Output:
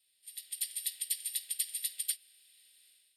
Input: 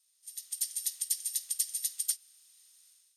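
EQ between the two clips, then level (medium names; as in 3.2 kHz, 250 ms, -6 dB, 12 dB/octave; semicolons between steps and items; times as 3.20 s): treble shelf 9.8 kHz -10.5 dB; band-stop 1.4 kHz, Q 23; static phaser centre 2.7 kHz, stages 4; +7.5 dB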